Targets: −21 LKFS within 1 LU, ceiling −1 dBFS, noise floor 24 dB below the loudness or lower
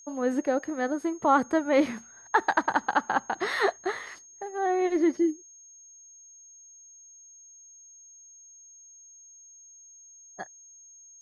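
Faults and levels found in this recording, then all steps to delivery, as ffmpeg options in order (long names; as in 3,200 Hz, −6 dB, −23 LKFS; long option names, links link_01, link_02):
interfering tone 6,500 Hz; level of the tone −49 dBFS; integrated loudness −27.0 LKFS; sample peak −9.5 dBFS; target loudness −21.0 LKFS
→ -af "bandreject=frequency=6500:width=30"
-af "volume=6dB"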